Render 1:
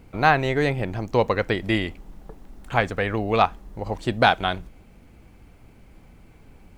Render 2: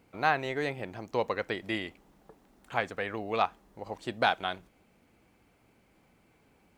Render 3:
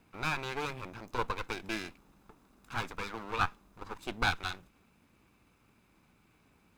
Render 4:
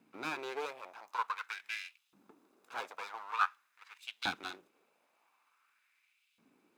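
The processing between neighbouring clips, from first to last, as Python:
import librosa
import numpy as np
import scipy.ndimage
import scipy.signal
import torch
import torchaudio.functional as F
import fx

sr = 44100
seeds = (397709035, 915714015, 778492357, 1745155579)

y1 = fx.highpass(x, sr, hz=300.0, slope=6)
y1 = y1 * 10.0 ** (-8.0 / 20.0)
y2 = fx.lower_of_two(y1, sr, delay_ms=0.8)
y3 = fx.filter_lfo_highpass(y2, sr, shape='saw_up', hz=0.47, low_hz=220.0, high_hz=3400.0, q=2.4)
y3 = y3 * 10.0 ** (-6.0 / 20.0)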